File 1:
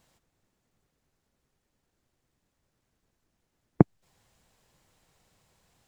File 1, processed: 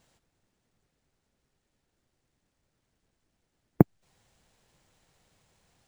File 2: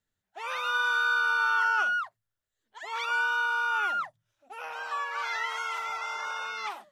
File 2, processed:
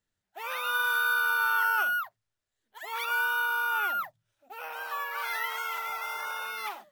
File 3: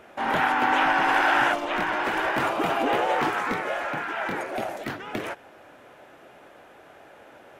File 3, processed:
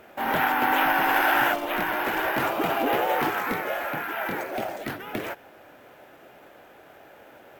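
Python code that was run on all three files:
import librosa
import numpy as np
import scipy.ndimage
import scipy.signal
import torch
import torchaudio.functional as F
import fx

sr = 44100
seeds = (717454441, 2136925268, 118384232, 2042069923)

y = fx.peak_eq(x, sr, hz=1100.0, db=-2.5, octaves=0.4)
y = np.repeat(y[::3], 3)[:len(y)]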